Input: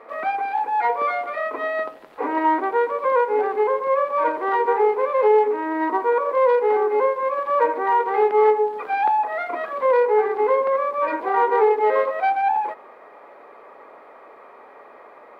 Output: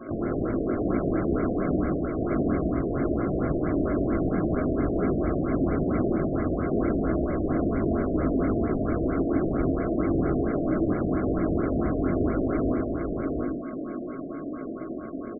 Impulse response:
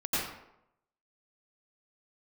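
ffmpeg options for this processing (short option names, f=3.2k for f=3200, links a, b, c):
-filter_complex "[0:a]acompressor=threshold=-23dB:ratio=2.5,acrusher=samples=27:mix=1:aa=0.000001,aeval=exprs='(mod(29.9*val(0)+1,2)-1)/29.9':c=same,asetrate=24750,aresample=44100,atempo=1.7818,lowshelf=f=72:g=-9.5,aecho=1:1:3:0.31,asplit=2[a][b];[b]lowshelf=f=440:g=9.5[c];[1:a]atrim=start_sample=2205,afade=t=out:st=0.21:d=0.01,atrim=end_sample=9702[d];[c][d]afir=irnorm=-1:irlink=0,volume=-12.5dB[e];[a][e]amix=inputs=2:normalize=0,flanger=delay=16.5:depth=6.6:speed=2.2,aeval=exprs='val(0)+0.00126*sin(2*PI*1100*n/s)':c=same,aecho=1:1:710:0.708,afftfilt=real='re*lt(b*sr/1024,690*pow(2300/690,0.5+0.5*sin(2*PI*4.4*pts/sr)))':imag='im*lt(b*sr/1024,690*pow(2300/690,0.5+0.5*sin(2*PI*4.4*pts/sr)))':win_size=1024:overlap=0.75,volume=7dB"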